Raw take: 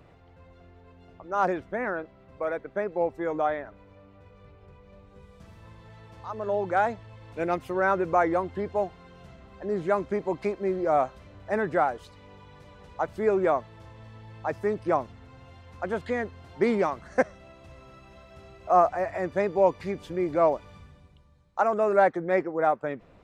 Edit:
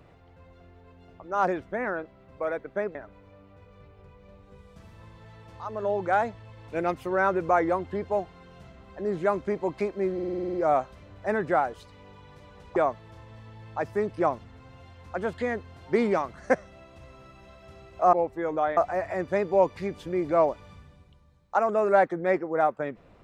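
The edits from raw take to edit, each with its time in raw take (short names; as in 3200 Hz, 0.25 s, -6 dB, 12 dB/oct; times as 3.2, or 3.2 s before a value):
2.95–3.59 move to 18.81
10.78 stutter 0.05 s, 9 plays
13–13.44 cut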